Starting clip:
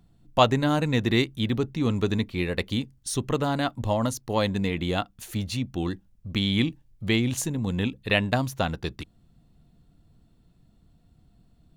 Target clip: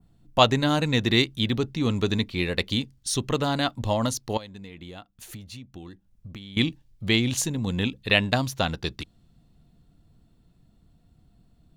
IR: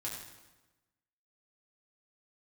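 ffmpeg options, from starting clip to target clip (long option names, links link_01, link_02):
-filter_complex "[0:a]asettb=1/sr,asplit=3[link_01][link_02][link_03];[link_01]atrim=end=4.374[link_04];[link_02]atrim=start=4.37:end=6.57,asetpts=PTS-STARTPTS,afade=type=in:duration=0.004:curve=qsin,afade=type=out:start_time=2.196:duration=0.004:curve=qsin,acompressor=threshold=-38dB:ratio=16[link_05];[link_03]atrim=start=6.566[link_06];[link_04][link_05]acrossfade=duration=0.004:curve1=hsin:curve2=qsin[link_07];[link_07][link_06]acrossfade=duration=0.004:curve1=qsin:curve2=hsin,adynamicequalizer=threshold=0.00631:dfrequency=4300:dqfactor=0.8:tfrequency=4300:tqfactor=0.8:attack=5:release=100:ratio=0.375:range=3.5:mode=boostabove:tftype=bell"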